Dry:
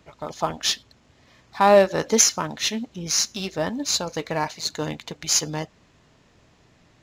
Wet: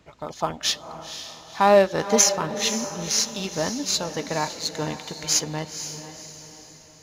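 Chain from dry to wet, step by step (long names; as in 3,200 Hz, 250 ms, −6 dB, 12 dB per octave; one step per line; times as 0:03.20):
feedback delay with all-pass diffusion 501 ms, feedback 44%, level −10 dB
level −1 dB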